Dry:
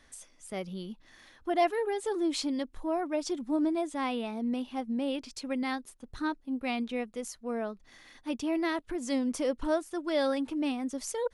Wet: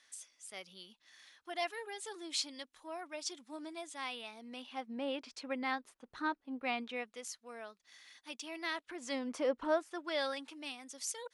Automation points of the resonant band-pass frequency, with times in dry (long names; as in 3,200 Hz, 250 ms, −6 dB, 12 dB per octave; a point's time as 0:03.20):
resonant band-pass, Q 0.51
0:04.38 5,300 Hz
0:05.06 1,400 Hz
0:06.72 1,400 Hz
0:07.50 5,400 Hz
0:08.52 5,400 Hz
0:09.53 1,000 Hz
0:10.65 5,800 Hz